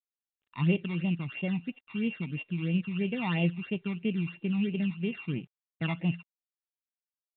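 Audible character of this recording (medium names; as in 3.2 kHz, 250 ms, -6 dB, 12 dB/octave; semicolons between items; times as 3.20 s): a buzz of ramps at a fixed pitch in blocks of 16 samples; phasing stages 12, 3 Hz, lowest notch 510–1500 Hz; a quantiser's noise floor 12-bit, dither none; µ-law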